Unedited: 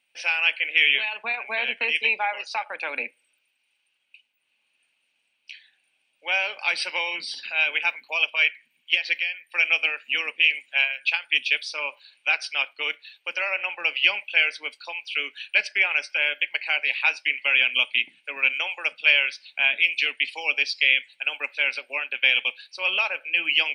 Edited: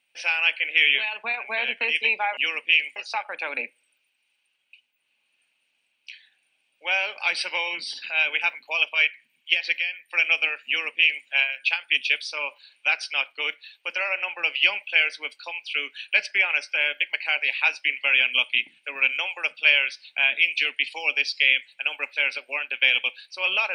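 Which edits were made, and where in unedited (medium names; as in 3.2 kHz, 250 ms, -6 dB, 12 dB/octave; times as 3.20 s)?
10.08–10.67 s: copy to 2.37 s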